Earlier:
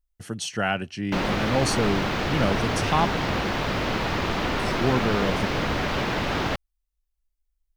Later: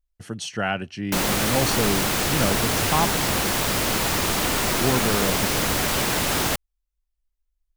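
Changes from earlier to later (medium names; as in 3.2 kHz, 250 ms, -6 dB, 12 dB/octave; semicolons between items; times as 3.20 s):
background: remove distance through air 250 m; master: add treble shelf 8 kHz -4 dB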